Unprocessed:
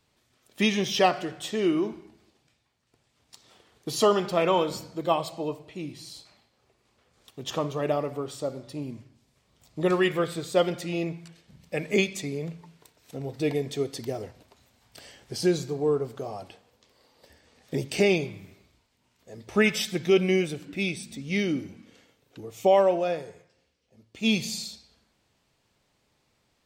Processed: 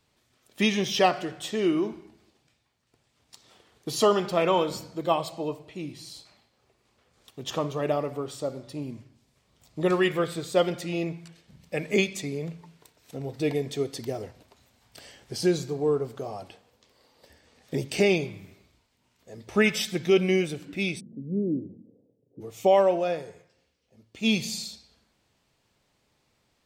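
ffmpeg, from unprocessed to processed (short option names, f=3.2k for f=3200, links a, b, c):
-filter_complex "[0:a]asplit=3[a][b][c];[a]afade=t=out:st=20.99:d=0.02[d];[b]asuperpass=centerf=230:order=8:qfactor=0.54,afade=t=in:st=20.99:d=0.02,afade=t=out:st=22.4:d=0.02[e];[c]afade=t=in:st=22.4:d=0.02[f];[d][e][f]amix=inputs=3:normalize=0"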